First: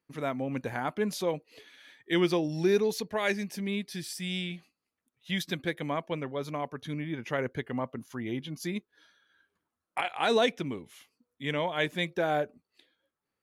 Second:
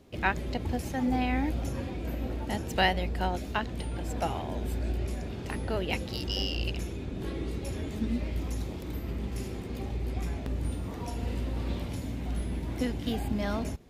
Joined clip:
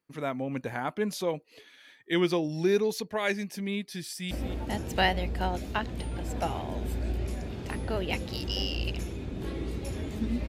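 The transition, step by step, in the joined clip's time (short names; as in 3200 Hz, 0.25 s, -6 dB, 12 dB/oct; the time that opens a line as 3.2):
first
4.05–4.31 echo throw 0.23 s, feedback 10%, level -13 dB
4.31 switch to second from 2.11 s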